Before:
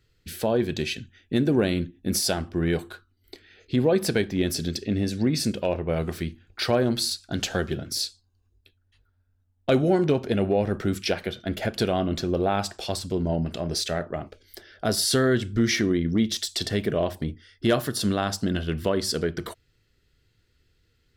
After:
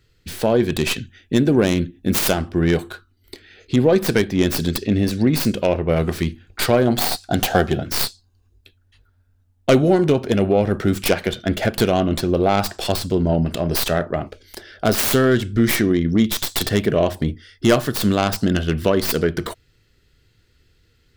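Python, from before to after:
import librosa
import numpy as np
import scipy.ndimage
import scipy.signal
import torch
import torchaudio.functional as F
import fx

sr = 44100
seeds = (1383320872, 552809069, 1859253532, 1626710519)

p1 = fx.tracing_dist(x, sr, depth_ms=0.29)
p2 = fx.rider(p1, sr, range_db=4, speed_s=0.5)
p3 = p1 + F.gain(torch.from_numpy(p2), -2.0).numpy()
p4 = fx.peak_eq(p3, sr, hz=740.0, db=11.5, octaves=0.38, at=(6.87, 7.82))
y = F.gain(torch.from_numpy(p4), 1.5).numpy()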